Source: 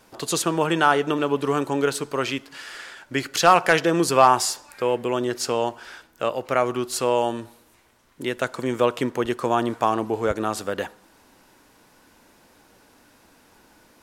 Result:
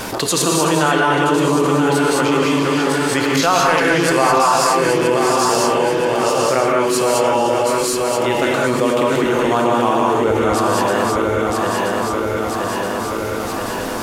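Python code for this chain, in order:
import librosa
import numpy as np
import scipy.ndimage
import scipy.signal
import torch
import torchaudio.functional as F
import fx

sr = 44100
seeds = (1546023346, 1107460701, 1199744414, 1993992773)

y = fx.reverse_delay_fb(x, sr, ms=488, feedback_pct=63, wet_db=-5)
y = fx.rev_gated(y, sr, seeds[0], gate_ms=240, shape='rising', drr_db=-3.0)
y = fx.env_flatten(y, sr, amount_pct=70)
y = y * 10.0 ** (-4.0 / 20.0)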